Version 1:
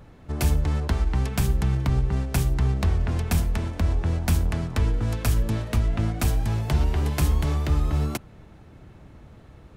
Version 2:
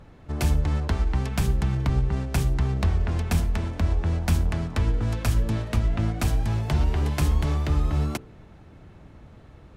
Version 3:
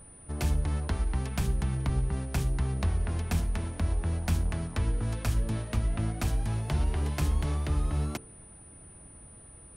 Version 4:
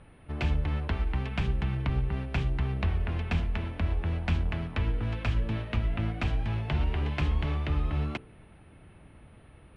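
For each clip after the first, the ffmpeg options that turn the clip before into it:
ffmpeg -i in.wav -af "highshelf=frequency=11000:gain=-9.5,bandreject=frequency=62.71:width_type=h:width=4,bandreject=frequency=125.42:width_type=h:width=4,bandreject=frequency=188.13:width_type=h:width=4,bandreject=frequency=250.84:width_type=h:width=4,bandreject=frequency=313.55:width_type=h:width=4,bandreject=frequency=376.26:width_type=h:width=4,bandreject=frequency=438.97:width_type=h:width=4,bandreject=frequency=501.68:width_type=h:width=4" out.wav
ffmpeg -i in.wav -af "aeval=exprs='val(0)+0.00562*sin(2*PI*9400*n/s)':channel_layout=same,volume=-5.5dB" out.wav
ffmpeg -i in.wav -af "lowpass=frequency=2800:width_type=q:width=2" out.wav

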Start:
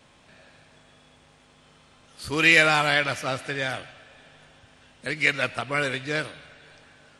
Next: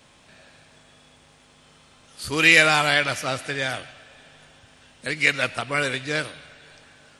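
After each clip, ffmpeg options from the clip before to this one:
ffmpeg -i in.wav -af "highshelf=frequency=4300:gain=6,volume=1dB" out.wav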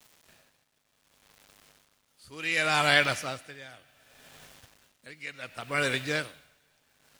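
ffmpeg -i in.wav -af "acrusher=bits=7:mix=0:aa=0.000001,aeval=exprs='val(0)*pow(10,-19*(0.5-0.5*cos(2*PI*0.67*n/s))/20)':channel_layout=same,volume=-1.5dB" out.wav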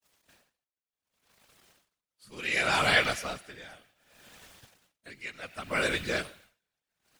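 ffmpeg -i in.wav -af "agate=range=-33dB:threshold=-55dB:ratio=3:detection=peak,afftfilt=real='hypot(re,im)*cos(2*PI*random(0))':imag='hypot(re,im)*sin(2*PI*random(1))':win_size=512:overlap=0.75,volume=5dB" out.wav

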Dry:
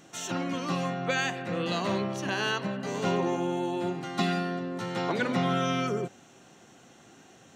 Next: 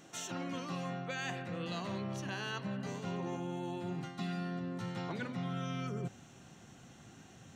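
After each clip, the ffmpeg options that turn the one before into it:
ffmpeg -i in.wav -af "asubboost=boost=4:cutoff=180,areverse,acompressor=threshold=-33dB:ratio=6,areverse,volume=-3dB" out.wav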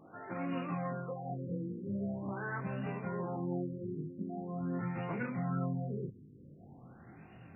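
ffmpeg -i in.wav -af "flanger=delay=19.5:depth=5.2:speed=0.48,afftfilt=real='re*lt(b*sr/1024,490*pow(2900/490,0.5+0.5*sin(2*PI*0.44*pts/sr)))':imag='im*lt(b*sr/1024,490*pow(2900/490,0.5+0.5*sin(2*PI*0.44*pts/sr)))':win_size=1024:overlap=0.75,volume=5dB" out.wav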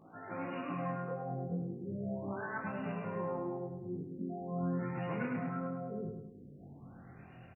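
ffmpeg -i in.wav -af "flanger=delay=18.5:depth=4.5:speed=0.34,aecho=1:1:104|208|312|416|520|624:0.562|0.27|0.13|0.0622|0.0299|0.0143,volume=2dB" out.wav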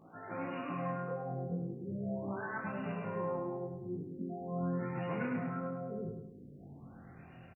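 ffmpeg -i in.wav -filter_complex "[0:a]asplit=2[link_01][link_02];[link_02]adelay=36,volume=-12.5dB[link_03];[link_01][link_03]amix=inputs=2:normalize=0" out.wav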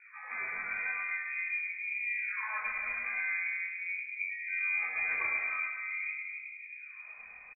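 ffmpeg -i in.wav -filter_complex "[0:a]asplit=2[link_01][link_02];[link_02]adelay=270,lowpass=frequency=830:poles=1,volume=-5dB,asplit=2[link_03][link_04];[link_04]adelay=270,lowpass=frequency=830:poles=1,volume=0.44,asplit=2[link_05][link_06];[link_06]adelay=270,lowpass=frequency=830:poles=1,volume=0.44,asplit=2[link_07][link_08];[link_08]adelay=270,lowpass=frequency=830:poles=1,volume=0.44,asplit=2[link_09][link_10];[link_10]adelay=270,lowpass=frequency=830:poles=1,volume=0.44[link_11];[link_01][link_03][link_05][link_07][link_09][link_11]amix=inputs=6:normalize=0,lowpass=frequency=2200:width_type=q:width=0.5098,lowpass=frequency=2200:width_type=q:width=0.6013,lowpass=frequency=2200:width_type=q:width=0.9,lowpass=frequency=2200:width_type=q:width=2.563,afreqshift=-2600,asubboost=boost=4.5:cutoff=75,volume=2dB" out.wav

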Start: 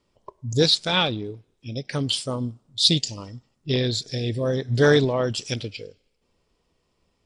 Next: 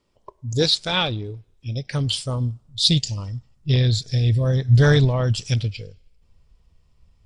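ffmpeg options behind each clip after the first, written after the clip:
ffmpeg -i in.wav -af "asubboost=boost=11:cutoff=99" out.wav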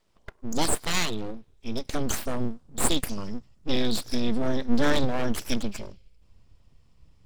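ffmpeg -i in.wav -af "acompressor=threshold=-25dB:ratio=1.5,aeval=exprs='abs(val(0))':channel_layout=same,volume=1dB" out.wav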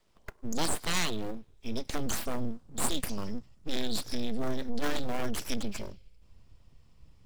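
ffmpeg -i in.wav -filter_complex "[0:a]acrossover=split=290|740|3200[link_01][link_02][link_03][link_04];[link_03]acrusher=bits=2:mode=log:mix=0:aa=0.000001[link_05];[link_01][link_02][link_05][link_04]amix=inputs=4:normalize=0,aeval=exprs='(tanh(10*val(0)+0.3)-tanh(0.3))/10':channel_layout=same,volume=1dB" out.wav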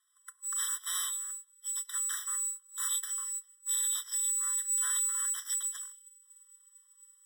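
ffmpeg -i in.wav -af "afftfilt=real='real(if(lt(b,736),b+184*(1-2*mod(floor(b/184),2)),b),0)':imag='imag(if(lt(b,736),b+184*(1-2*mod(floor(b/184),2)),b),0)':win_size=2048:overlap=0.75,aeval=exprs='abs(val(0))':channel_layout=same,afftfilt=real='re*eq(mod(floor(b*sr/1024/1000),2),1)':imag='im*eq(mod(floor(b*sr/1024/1000),2),1)':win_size=1024:overlap=0.75" out.wav

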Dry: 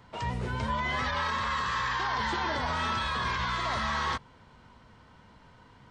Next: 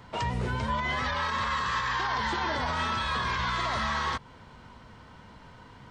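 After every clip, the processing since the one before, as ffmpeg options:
ffmpeg -i in.wav -af "alimiter=level_in=2dB:limit=-24dB:level=0:latency=1:release=196,volume=-2dB,volume=5.5dB" out.wav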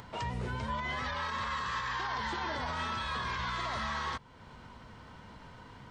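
ffmpeg -i in.wav -af "acompressor=mode=upward:threshold=-37dB:ratio=2.5,volume=-6dB" out.wav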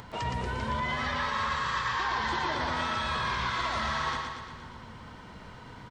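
ffmpeg -i in.wav -af "aecho=1:1:117|234|351|468|585|702|819|936:0.631|0.372|0.22|0.13|0.0765|0.0451|0.0266|0.0157,volume=3dB" out.wav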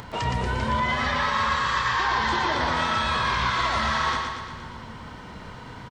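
ffmpeg -i in.wav -filter_complex "[0:a]asplit=2[link_01][link_02];[link_02]adelay=31,volume=-11dB[link_03];[link_01][link_03]amix=inputs=2:normalize=0,volume=6dB" out.wav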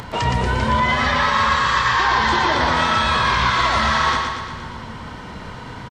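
ffmpeg -i in.wav -af "aresample=32000,aresample=44100,volume=6.5dB" out.wav

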